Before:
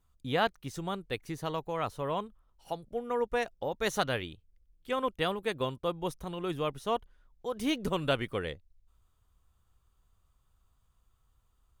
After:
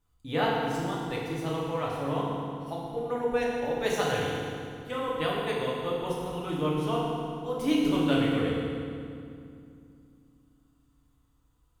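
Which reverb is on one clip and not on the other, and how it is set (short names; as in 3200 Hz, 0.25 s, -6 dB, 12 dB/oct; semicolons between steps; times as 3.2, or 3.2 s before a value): FDN reverb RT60 2.4 s, low-frequency decay 1.5×, high-frequency decay 0.8×, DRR -5.5 dB; gain -4 dB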